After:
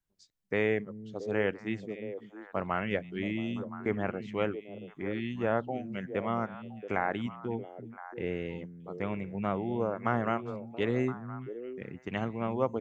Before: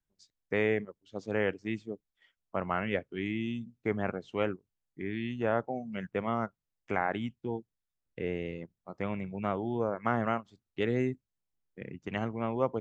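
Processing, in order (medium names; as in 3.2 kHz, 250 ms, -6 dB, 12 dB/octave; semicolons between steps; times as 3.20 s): repeats whose band climbs or falls 339 ms, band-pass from 160 Hz, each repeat 1.4 oct, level -5.5 dB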